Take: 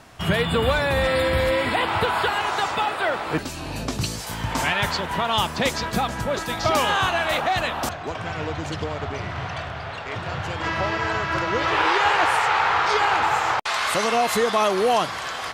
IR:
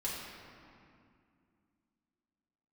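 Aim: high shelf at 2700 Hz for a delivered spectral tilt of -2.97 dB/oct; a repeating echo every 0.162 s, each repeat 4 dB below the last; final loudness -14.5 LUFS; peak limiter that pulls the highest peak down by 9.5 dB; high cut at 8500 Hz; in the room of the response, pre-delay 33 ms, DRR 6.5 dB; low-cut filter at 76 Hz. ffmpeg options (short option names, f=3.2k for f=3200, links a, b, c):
-filter_complex "[0:a]highpass=76,lowpass=8.5k,highshelf=f=2.7k:g=8,alimiter=limit=-15dB:level=0:latency=1,aecho=1:1:162|324|486|648|810|972|1134|1296|1458:0.631|0.398|0.25|0.158|0.0994|0.0626|0.0394|0.0249|0.0157,asplit=2[a][b];[1:a]atrim=start_sample=2205,adelay=33[c];[b][c]afir=irnorm=-1:irlink=0,volume=-10dB[d];[a][d]amix=inputs=2:normalize=0,volume=7dB"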